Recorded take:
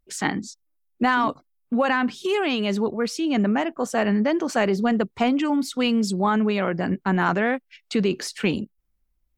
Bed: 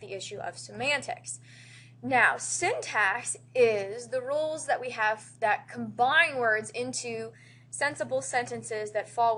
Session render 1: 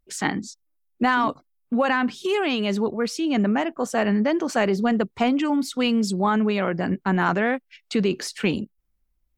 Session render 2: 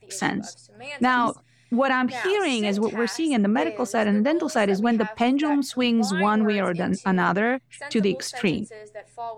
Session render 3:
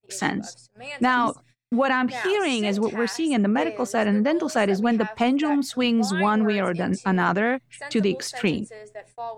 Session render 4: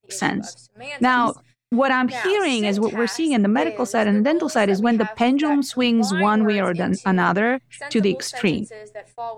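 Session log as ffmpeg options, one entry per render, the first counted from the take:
ffmpeg -i in.wav -af anull out.wav
ffmpeg -i in.wav -i bed.wav -filter_complex "[1:a]volume=-8.5dB[link_01];[0:a][link_01]amix=inputs=2:normalize=0" out.wav
ffmpeg -i in.wav -af "agate=range=-33dB:threshold=-49dB:ratio=16:detection=peak" out.wav
ffmpeg -i in.wav -af "volume=3dB" out.wav

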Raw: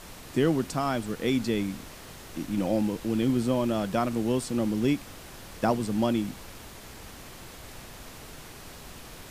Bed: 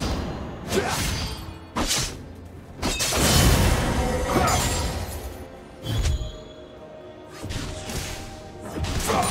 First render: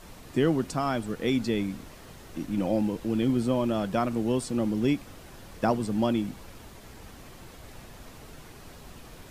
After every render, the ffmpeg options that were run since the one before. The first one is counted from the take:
ffmpeg -i in.wav -af "afftdn=noise_reduction=6:noise_floor=-46" out.wav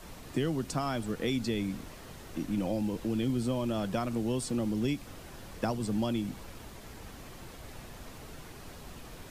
ffmpeg -i in.wav -filter_complex "[0:a]acrossover=split=130|3000[link_01][link_02][link_03];[link_02]acompressor=threshold=-29dB:ratio=6[link_04];[link_01][link_04][link_03]amix=inputs=3:normalize=0" out.wav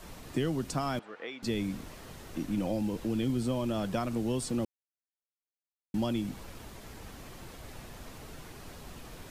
ffmpeg -i in.wav -filter_complex "[0:a]asettb=1/sr,asplit=3[link_01][link_02][link_03];[link_01]atrim=end=0.994[link_04];[link_02]atrim=start=0.99:end=1.43,asetpts=PTS-STARTPTS,afade=type=in:duration=0.004:curve=qsin,afade=type=out:start_time=0.436:duration=0.004:curve=qsin,highpass=690,lowpass=2200[link_05];[link_03]atrim=start=1.426[link_06];[link_04][link_05]acrossfade=duration=0.004:curve1=hsin:curve2=qsin[link_07];[link_07][link_06]acrossfade=duration=0.004:curve1=qsin:curve2=hsin,asplit=3[link_08][link_09][link_10];[link_08]atrim=end=4.65,asetpts=PTS-STARTPTS,afade=type=out:start_time=4.646:duration=0.004:curve=hsin[link_11];[link_09]atrim=start=4.65:end=5.94,asetpts=PTS-STARTPTS,volume=0[link_12];[link_10]atrim=start=5.94,asetpts=PTS-STARTPTS,afade=type=in:duration=0.004:curve=hsin[link_13];[link_11][link_12][link_13]concat=n=3:v=0:a=1" out.wav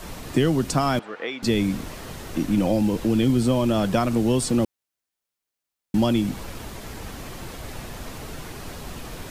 ffmpeg -i in.wav -af "volume=10.5dB" out.wav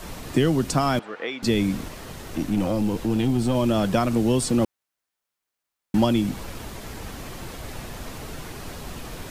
ffmpeg -i in.wav -filter_complex "[0:a]asettb=1/sr,asplit=3[link_01][link_02][link_03];[link_01]atrim=end=1.884[link_04];[link_02]atrim=start=1.88:end=3.55,asetpts=PTS-STARTPTS,afade=type=in:duration=0.004:curve=qsin,afade=type=out:start_time=1.666:duration=0.004:curve=qsin,aeval=exprs='(tanh(5.62*val(0)+0.4)-tanh(0.4))/5.62':channel_layout=same[link_05];[link_03]atrim=start=3.546[link_06];[link_04][link_05]acrossfade=duration=0.004:curve1=hsin:curve2=qsin[link_07];[link_07][link_06]acrossfade=duration=0.004:curve1=qsin:curve2=hsin,asettb=1/sr,asplit=3[link_08][link_09][link_10];[link_08]atrim=end=4.614[link_11];[link_09]atrim=start=4.61:end=6.05,asetpts=PTS-STARTPTS,afade=type=in:duration=0.004:curve=qsin,afade=type=out:start_time=1.436:duration=0.004:curve=qsin,equalizer=frequency=1200:width=0.67:gain=5[link_12];[link_10]atrim=start=6.046[link_13];[link_11][link_12]acrossfade=duration=0.004:curve1=hsin:curve2=qsin[link_14];[link_14][link_13]acrossfade=duration=0.004:curve1=qsin:curve2=hsin" out.wav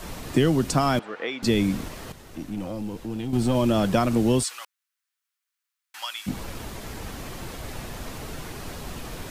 ffmpeg -i in.wav -filter_complex "[0:a]asplit=3[link_01][link_02][link_03];[link_01]afade=type=out:start_time=4.42:duration=0.02[link_04];[link_02]highpass=frequency=1200:width=0.5412,highpass=frequency=1200:width=1.3066,afade=type=in:start_time=4.42:duration=0.02,afade=type=out:start_time=6.26:duration=0.02[link_05];[link_03]afade=type=in:start_time=6.26:duration=0.02[link_06];[link_04][link_05][link_06]amix=inputs=3:normalize=0,asplit=3[link_07][link_08][link_09];[link_07]atrim=end=2.122[link_10];[link_08]atrim=start=2.118:end=3.332,asetpts=PTS-STARTPTS,volume=-8.5dB[link_11];[link_09]atrim=start=3.328[link_12];[link_10][link_11]acrossfade=duration=0.004:curve1=hsin:curve2=hsin[link_13];[link_13][link_12]acrossfade=duration=0.004:curve1=hsin:curve2=hsin" out.wav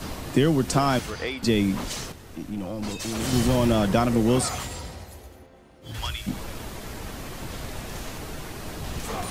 ffmpeg -i in.wav -i bed.wav -filter_complex "[1:a]volume=-10.5dB[link_01];[0:a][link_01]amix=inputs=2:normalize=0" out.wav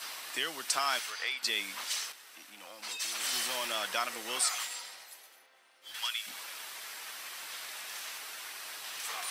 ffmpeg -i in.wav -af "highpass=1500,bandreject=frequency=6800:width=14" out.wav

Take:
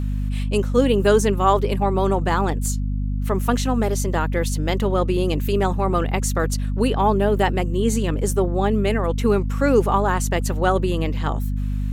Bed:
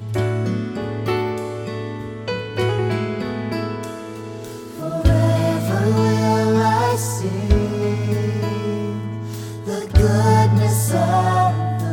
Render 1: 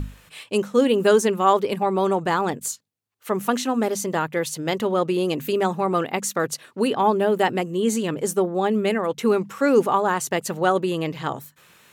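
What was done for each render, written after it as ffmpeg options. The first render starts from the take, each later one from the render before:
ffmpeg -i in.wav -af "bandreject=frequency=50:width_type=h:width=6,bandreject=frequency=100:width_type=h:width=6,bandreject=frequency=150:width_type=h:width=6,bandreject=frequency=200:width_type=h:width=6,bandreject=frequency=250:width_type=h:width=6" out.wav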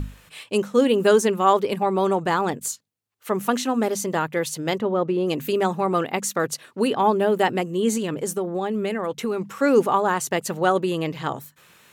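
ffmpeg -i in.wav -filter_complex "[0:a]asplit=3[link_01][link_02][link_03];[link_01]afade=type=out:start_time=4.78:duration=0.02[link_04];[link_02]lowpass=frequency=1200:poles=1,afade=type=in:start_time=4.78:duration=0.02,afade=type=out:start_time=5.26:duration=0.02[link_05];[link_03]afade=type=in:start_time=5.26:duration=0.02[link_06];[link_04][link_05][link_06]amix=inputs=3:normalize=0,asettb=1/sr,asplit=3[link_07][link_08][link_09];[link_07]atrim=end=7.974[link_10];[link_08]atrim=start=7.97:end=9.49,asetpts=PTS-STARTPTS,afade=type=in:duration=0.004:curve=qsin,afade=type=out:start_time=1.516:duration=0.004:curve=qsin,acompressor=threshold=-21dB:ratio=6:attack=3.2:release=140:knee=1:detection=peak[link_11];[link_09]atrim=start=9.486[link_12];[link_10][link_11]acrossfade=duration=0.004:curve1=hsin:curve2=qsin[link_13];[link_13][link_12]acrossfade=duration=0.004:curve1=qsin:curve2=hsin" out.wav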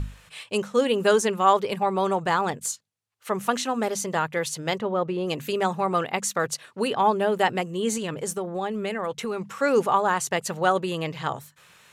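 ffmpeg -i in.wav -af "lowpass=11000,equalizer=frequency=290:width=1.3:gain=-8" out.wav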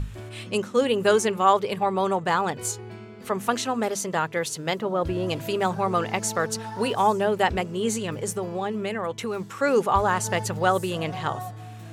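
ffmpeg -i in.wav -i bed.wav -filter_complex "[1:a]volume=-19dB[link_01];[0:a][link_01]amix=inputs=2:normalize=0" out.wav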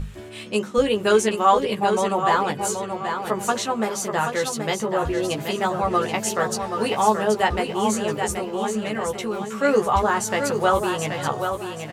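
ffmpeg -i in.wav -filter_complex "[0:a]asplit=2[link_01][link_02];[link_02]adelay=14,volume=-3.5dB[link_03];[link_01][link_03]amix=inputs=2:normalize=0,asplit=2[link_04][link_05];[link_05]aecho=0:1:779|1558|2337|3116:0.473|0.156|0.0515|0.017[link_06];[link_04][link_06]amix=inputs=2:normalize=0" out.wav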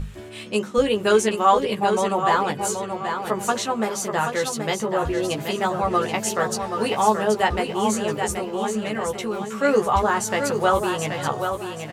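ffmpeg -i in.wav -af anull out.wav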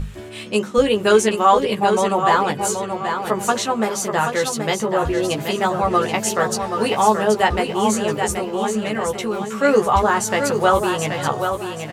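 ffmpeg -i in.wav -af "volume=3.5dB,alimiter=limit=-3dB:level=0:latency=1" out.wav

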